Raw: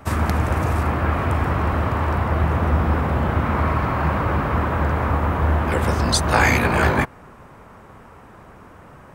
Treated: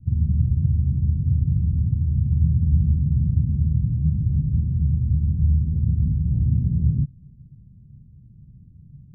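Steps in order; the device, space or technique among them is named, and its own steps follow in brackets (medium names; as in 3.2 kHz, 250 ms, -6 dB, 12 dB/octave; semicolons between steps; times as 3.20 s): the neighbour's flat through the wall (low-pass 170 Hz 24 dB/octave; peaking EQ 140 Hz +7 dB 0.77 oct)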